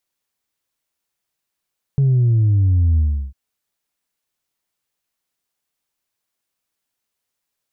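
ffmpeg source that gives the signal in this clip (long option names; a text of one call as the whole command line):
ffmpeg -f lavfi -i "aevalsrc='0.251*clip((1.35-t)/0.35,0,1)*tanh(1.12*sin(2*PI*140*1.35/log(65/140)*(exp(log(65/140)*t/1.35)-1)))/tanh(1.12)':duration=1.35:sample_rate=44100" out.wav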